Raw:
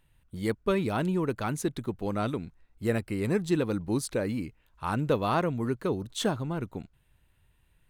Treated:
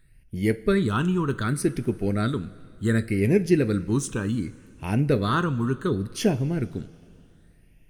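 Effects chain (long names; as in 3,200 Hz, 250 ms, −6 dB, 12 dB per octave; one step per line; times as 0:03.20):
tape wow and flutter 21 cents
all-pass phaser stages 8, 0.67 Hz, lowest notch 600–1,200 Hz
coupled-rooms reverb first 0.24 s, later 2.7 s, from −18 dB, DRR 9.5 dB
level +7 dB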